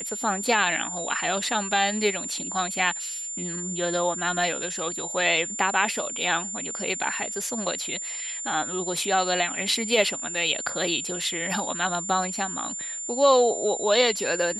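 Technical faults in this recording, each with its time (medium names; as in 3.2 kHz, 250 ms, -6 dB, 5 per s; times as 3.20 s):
whine 7.2 kHz -31 dBFS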